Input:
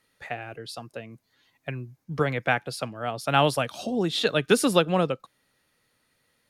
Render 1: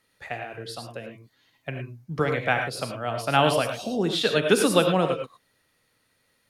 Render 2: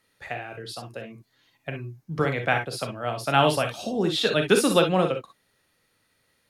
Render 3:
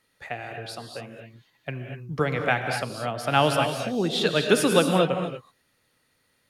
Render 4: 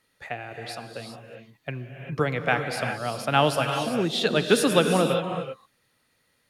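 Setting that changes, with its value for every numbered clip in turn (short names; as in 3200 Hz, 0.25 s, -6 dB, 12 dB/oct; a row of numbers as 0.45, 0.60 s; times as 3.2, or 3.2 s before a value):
non-linear reverb, gate: 130, 80, 270, 420 ms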